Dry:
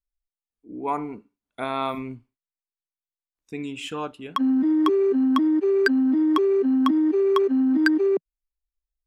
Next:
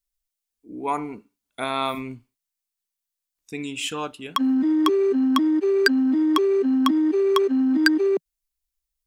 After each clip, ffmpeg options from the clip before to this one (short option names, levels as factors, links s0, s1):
-af "highshelf=f=3000:g=12"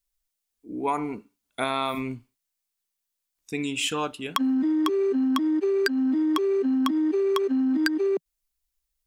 -af "acompressor=threshold=0.0631:ratio=6,volume=1.33"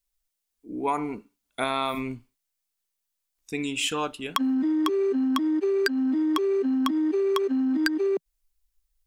-af "asubboost=boost=3.5:cutoff=56"